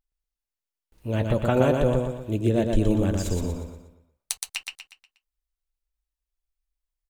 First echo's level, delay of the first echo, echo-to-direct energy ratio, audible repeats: -4.0 dB, 0.12 s, -3.0 dB, 5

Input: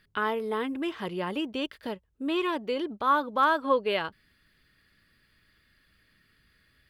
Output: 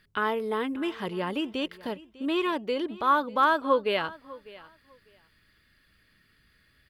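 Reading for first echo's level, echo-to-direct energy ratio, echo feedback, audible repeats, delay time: -20.0 dB, -20.0 dB, 18%, 2, 0.599 s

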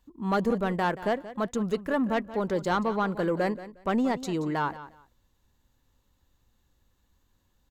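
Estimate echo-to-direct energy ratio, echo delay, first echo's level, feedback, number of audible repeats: -15.0 dB, 0.179 s, -15.0 dB, 20%, 2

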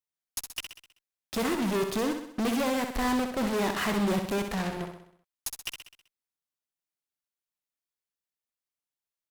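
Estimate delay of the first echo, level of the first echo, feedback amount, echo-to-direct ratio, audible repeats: 64 ms, -7.0 dB, 52%, -5.5 dB, 5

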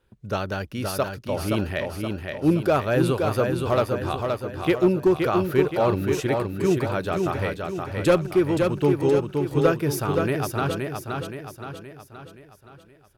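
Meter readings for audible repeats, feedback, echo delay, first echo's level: 5, 49%, 0.522 s, -4.5 dB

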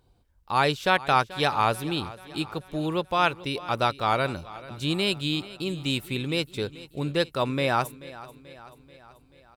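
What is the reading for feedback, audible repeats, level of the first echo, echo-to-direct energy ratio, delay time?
57%, 4, -18.0 dB, -16.5 dB, 0.435 s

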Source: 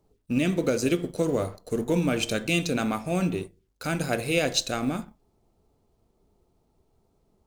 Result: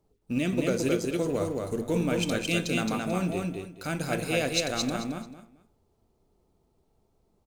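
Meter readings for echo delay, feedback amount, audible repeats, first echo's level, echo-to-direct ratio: 0.219 s, 23%, 3, -3.0 dB, -3.0 dB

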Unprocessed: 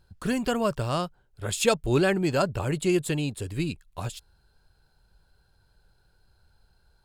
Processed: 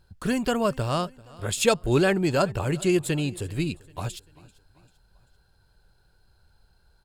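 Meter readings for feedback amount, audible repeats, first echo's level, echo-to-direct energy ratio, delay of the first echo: 49%, 2, -23.0 dB, -22.0 dB, 0.391 s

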